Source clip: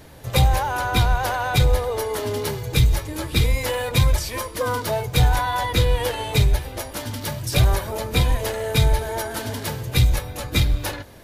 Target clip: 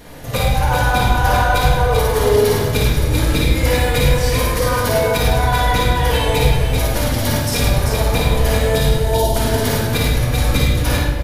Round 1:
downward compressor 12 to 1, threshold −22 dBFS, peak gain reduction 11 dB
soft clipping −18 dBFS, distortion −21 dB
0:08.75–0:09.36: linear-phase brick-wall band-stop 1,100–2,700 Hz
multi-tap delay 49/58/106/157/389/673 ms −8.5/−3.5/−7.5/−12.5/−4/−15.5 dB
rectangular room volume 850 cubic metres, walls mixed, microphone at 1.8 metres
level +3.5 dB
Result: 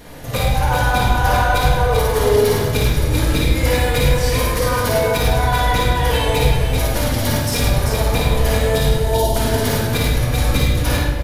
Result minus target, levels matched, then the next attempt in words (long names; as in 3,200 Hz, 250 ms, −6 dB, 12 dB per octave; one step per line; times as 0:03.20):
soft clipping: distortion +13 dB
downward compressor 12 to 1, threshold −22 dBFS, peak gain reduction 11 dB
soft clipping −10.5 dBFS, distortion −34 dB
0:08.75–0:09.36: linear-phase brick-wall band-stop 1,100–2,700 Hz
multi-tap delay 49/58/106/157/389/673 ms −8.5/−3.5/−7.5/−12.5/−4/−15.5 dB
rectangular room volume 850 cubic metres, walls mixed, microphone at 1.8 metres
level +3.5 dB